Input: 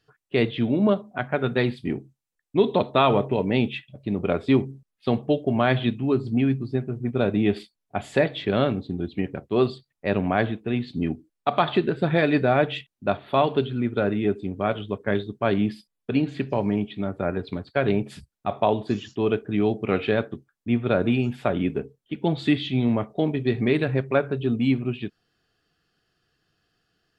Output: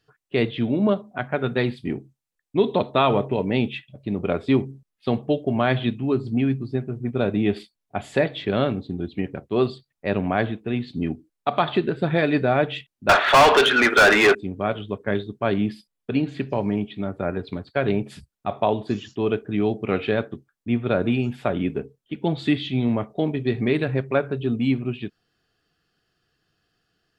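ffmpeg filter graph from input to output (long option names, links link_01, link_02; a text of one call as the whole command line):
ffmpeg -i in.wav -filter_complex "[0:a]asettb=1/sr,asplit=3[link_01][link_02][link_03];[link_01]atrim=end=13.094[link_04];[link_02]atrim=start=13.09:end=14.35,asetpts=PTS-STARTPTS,afade=type=in:duration=0.004:curve=qsin,afade=type=out:start_time=1.256:duration=0.004:curve=qsin,highpass=490,equalizer=frequency=1600:width_type=o:width=1:gain=10,asplit=2[link_05][link_06];[link_06]highpass=frequency=720:poles=1,volume=32dB,asoftclip=type=tanh:threshold=-6dB[link_07];[link_05][link_07]amix=inputs=2:normalize=0,lowpass=frequency=3800:poles=1,volume=-6dB[link_08];[link_03]atrim=start=14.346[link_09];[link_04][link_08]acrossfade=duration=0.004:curve1=hsin:curve2=qsin[link_10];[link_10][link_09]acrossfade=duration=0.004:curve1=qsin:curve2=hsin" out.wav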